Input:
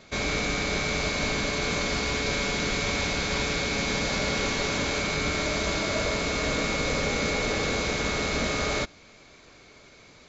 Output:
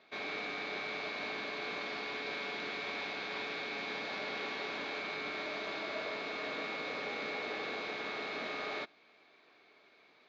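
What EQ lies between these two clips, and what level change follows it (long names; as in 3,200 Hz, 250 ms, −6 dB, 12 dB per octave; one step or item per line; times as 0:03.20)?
loudspeaker in its box 460–3,500 Hz, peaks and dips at 540 Hz −8 dB, 980 Hz −4 dB, 1,400 Hz −5 dB, 2,100 Hz −4 dB, 3,000 Hz −5 dB
−5.5 dB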